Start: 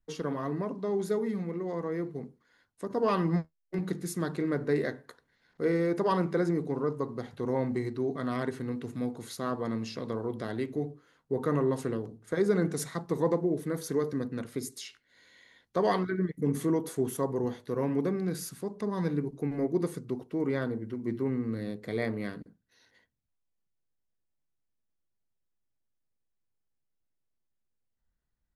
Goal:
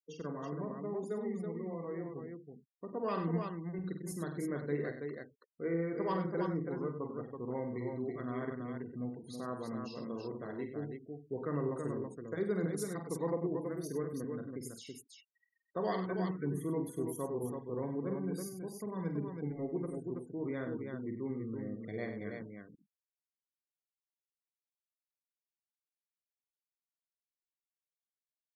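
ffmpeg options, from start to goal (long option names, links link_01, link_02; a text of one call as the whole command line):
ffmpeg -i in.wav -filter_complex "[0:a]afftfilt=real='re*gte(hypot(re,im),0.01)':imag='im*gte(hypot(re,im),0.01)':win_size=1024:overlap=0.75,equalizer=frequency=9800:width=2.5:gain=2.5,asplit=2[link_01][link_02];[link_02]aecho=0:1:42|48|97|328:0.188|0.355|0.316|0.562[link_03];[link_01][link_03]amix=inputs=2:normalize=0,volume=-9dB" out.wav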